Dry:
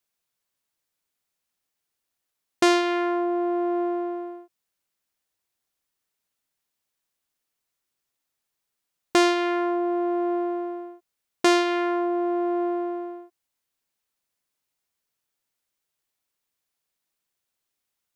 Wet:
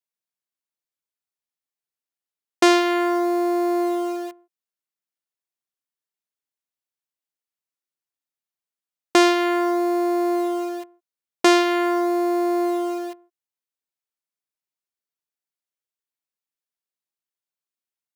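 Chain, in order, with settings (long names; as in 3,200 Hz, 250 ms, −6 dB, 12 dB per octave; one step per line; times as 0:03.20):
noise gate −35 dBFS, range −11 dB
in parallel at −3 dB: bit reduction 6 bits
on the sum: high-pass filter 130 Hz
level −1 dB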